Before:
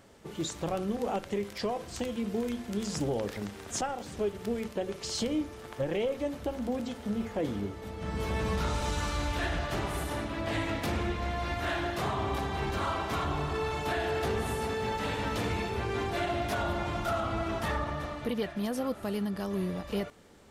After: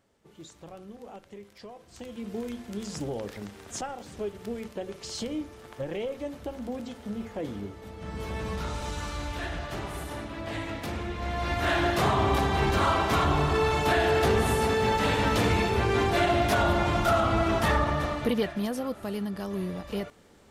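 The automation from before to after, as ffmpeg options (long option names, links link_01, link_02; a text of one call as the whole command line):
ffmpeg -i in.wav -af "volume=7.5dB,afade=type=in:start_time=1.86:duration=0.51:silence=0.298538,afade=type=in:start_time=11.09:duration=0.78:silence=0.316228,afade=type=out:start_time=18.12:duration=0.69:silence=0.421697" out.wav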